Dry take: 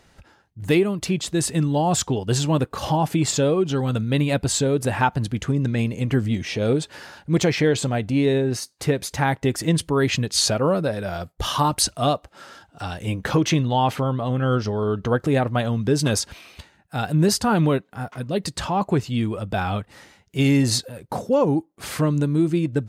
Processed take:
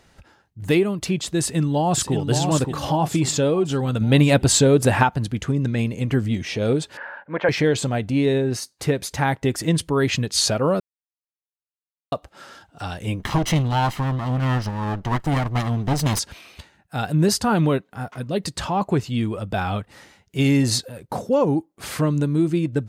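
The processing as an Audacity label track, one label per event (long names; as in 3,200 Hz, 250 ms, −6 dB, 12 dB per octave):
1.400000	2.150000	delay throw 570 ms, feedback 45%, level −6 dB
4.010000	5.030000	clip gain +5.5 dB
6.970000	7.490000	loudspeaker in its box 360–2,400 Hz, peaks and dips at 360 Hz −8 dB, 560 Hz +8 dB, 960 Hz +8 dB, 1,600 Hz +10 dB
10.800000	12.120000	silence
13.190000	16.190000	lower of the sound and its delayed copy delay 1 ms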